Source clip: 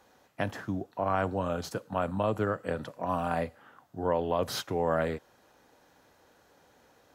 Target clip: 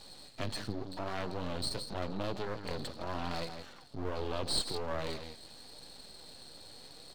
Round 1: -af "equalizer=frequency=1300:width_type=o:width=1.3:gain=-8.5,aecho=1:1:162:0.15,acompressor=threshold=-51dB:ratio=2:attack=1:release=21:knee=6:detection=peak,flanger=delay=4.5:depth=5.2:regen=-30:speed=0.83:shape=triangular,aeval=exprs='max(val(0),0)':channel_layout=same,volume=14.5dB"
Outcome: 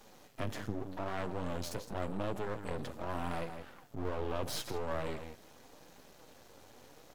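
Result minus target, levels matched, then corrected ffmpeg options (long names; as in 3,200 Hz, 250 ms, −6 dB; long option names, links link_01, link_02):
4,000 Hz band −7.5 dB
-af "lowpass=frequency=4300:width_type=q:width=16,equalizer=frequency=1300:width_type=o:width=1.3:gain=-8.5,aecho=1:1:162:0.15,acompressor=threshold=-51dB:ratio=2:attack=1:release=21:knee=6:detection=peak,flanger=delay=4.5:depth=5.2:regen=-30:speed=0.83:shape=triangular,aeval=exprs='max(val(0),0)':channel_layout=same,volume=14.5dB"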